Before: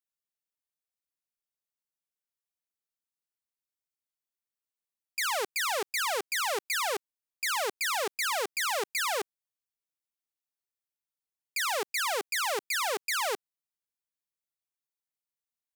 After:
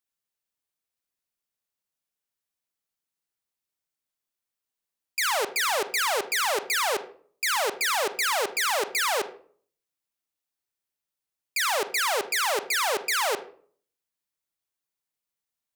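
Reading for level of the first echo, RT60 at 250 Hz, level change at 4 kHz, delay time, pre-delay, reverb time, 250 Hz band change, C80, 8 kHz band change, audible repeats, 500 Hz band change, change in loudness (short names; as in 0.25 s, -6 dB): none, 0.60 s, +4.5 dB, none, 33 ms, 0.50 s, +5.0 dB, 17.5 dB, +4.5 dB, none, +5.0 dB, +4.5 dB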